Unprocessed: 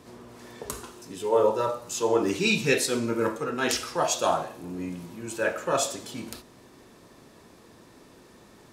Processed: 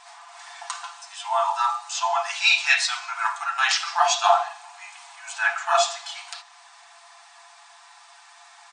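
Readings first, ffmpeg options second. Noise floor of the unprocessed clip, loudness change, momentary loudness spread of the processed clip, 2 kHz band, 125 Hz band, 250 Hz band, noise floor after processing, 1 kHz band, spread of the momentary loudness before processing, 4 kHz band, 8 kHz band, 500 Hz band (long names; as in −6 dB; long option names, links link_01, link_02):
−54 dBFS, +4.5 dB, 21 LU, +8.0 dB, below −40 dB, below −40 dB, −51 dBFS, +8.5 dB, 16 LU, +7.5 dB, +1.5 dB, −4.5 dB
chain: -filter_complex "[0:a]afftfilt=real='re*between(b*sr/4096,670,9400)':imag='im*between(b*sr/4096,670,9400)':win_size=4096:overlap=0.75,aecho=1:1:5.9:0.65,acrossover=split=6200[link_01][link_02];[link_02]acompressor=threshold=-55dB:ratio=6[link_03];[link_01][link_03]amix=inputs=2:normalize=0,volume=7dB"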